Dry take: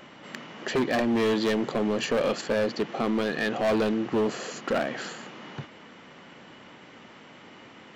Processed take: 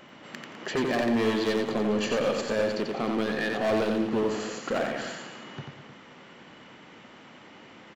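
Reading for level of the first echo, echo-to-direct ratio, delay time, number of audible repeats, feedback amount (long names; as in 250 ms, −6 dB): −4.0 dB, −3.0 dB, 90 ms, 3, repeats not evenly spaced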